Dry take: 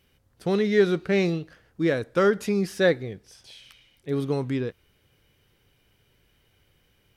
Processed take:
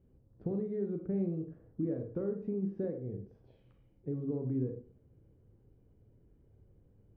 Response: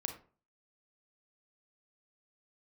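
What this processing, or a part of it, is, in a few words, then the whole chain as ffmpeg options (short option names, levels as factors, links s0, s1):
television next door: -filter_complex "[0:a]acompressor=threshold=0.0178:ratio=4,lowpass=400[s0];[1:a]atrim=start_sample=2205[s1];[s0][s1]afir=irnorm=-1:irlink=0,volume=1.41"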